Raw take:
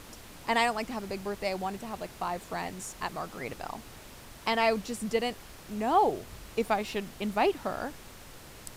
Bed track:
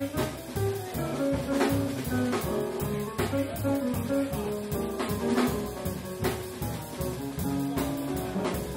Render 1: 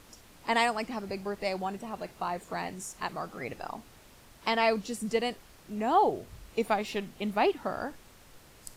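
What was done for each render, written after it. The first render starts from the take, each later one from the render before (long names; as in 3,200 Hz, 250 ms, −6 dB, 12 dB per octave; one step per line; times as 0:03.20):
noise reduction from a noise print 7 dB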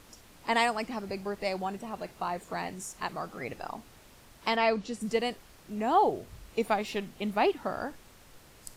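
0:04.56–0:05.01: high-frequency loss of the air 65 metres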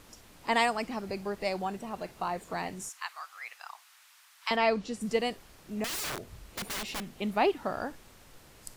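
0:02.89–0:04.51: high-pass filter 1,100 Hz 24 dB per octave
0:05.84–0:07.11: wrap-around overflow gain 30 dB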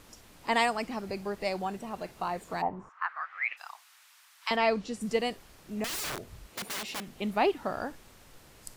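0:02.61–0:03.56: low-pass with resonance 820 Hz → 2,600 Hz, resonance Q 4.3
0:06.47–0:07.08: high-pass filter 190 Hz 6 dB per octave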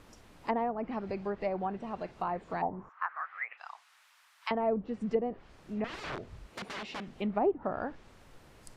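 treble cut that deepens with the level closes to 680 Hz, closed at −25 dBFS
high-shelf EQ 3,600 Hz −10.5 dB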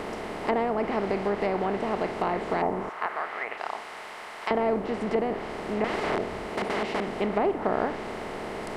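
compressor on every frequency bin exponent 0.4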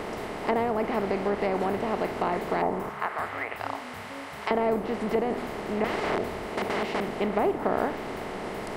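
mix in bed track −15.5 dB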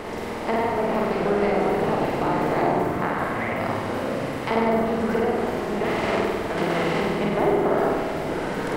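flutter between parallel walls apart 8.4 metres, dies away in 1.4 s
delay with pitch and tempo change per echo 532 ms, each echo −5 semitones, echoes 3, each echo −6 dB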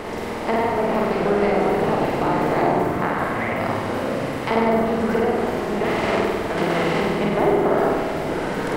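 level +2.5 dB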